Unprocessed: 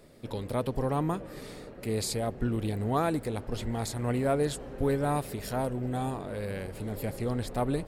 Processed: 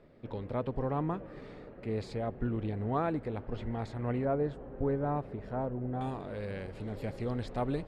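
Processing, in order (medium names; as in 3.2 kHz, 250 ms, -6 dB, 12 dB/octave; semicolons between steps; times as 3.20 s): low-pass 2.3 kHz 12 dB/octave, from 4.25 s 1.3 kHz, from 6.01 s 4.4 kHz; trim -3.5 dB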